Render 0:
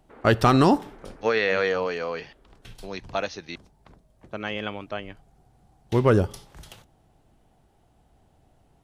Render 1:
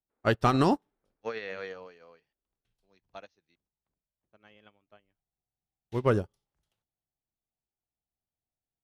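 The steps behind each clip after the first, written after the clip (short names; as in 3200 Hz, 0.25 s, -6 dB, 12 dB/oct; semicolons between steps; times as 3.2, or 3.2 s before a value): upward expander 2.5:1, over -37 dBFS; gain -4 dB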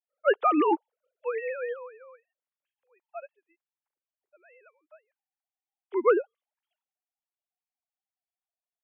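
sine-wave speech; gain +2 dB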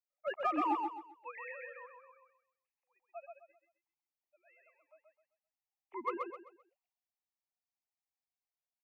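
fixed phaser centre 2200 Hz, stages 8; in parallel at -10.5 dB: hard clip -28 dBFS, distortion -9 dB; on the sum: feedback echo 0.13 s, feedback 32%, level -4 dB; gain -7.5 dB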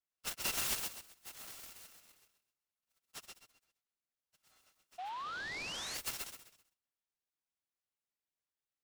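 FFT order left unsorted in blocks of 256 samples; painted sound rise, 4.98–5.98, 700–4800 Hz -40 dBFS; noise-modulated delay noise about 2100 Hz, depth 0.042 ms; gain -2 dB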